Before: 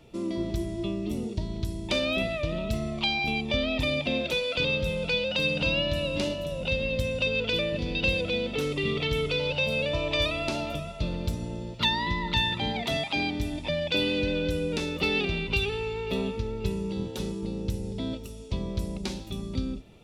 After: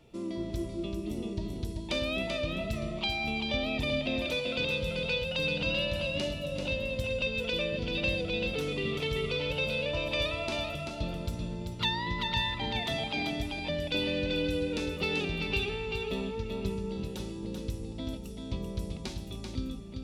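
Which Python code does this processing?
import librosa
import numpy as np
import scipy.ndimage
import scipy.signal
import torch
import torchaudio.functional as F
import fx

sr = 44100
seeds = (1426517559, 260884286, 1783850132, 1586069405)

p1 = x + fx.echo_single(x, sr, ms=387, db=-5.0, dry=0)
y = p1 * 10.0 ** (-5.0 / 20.0)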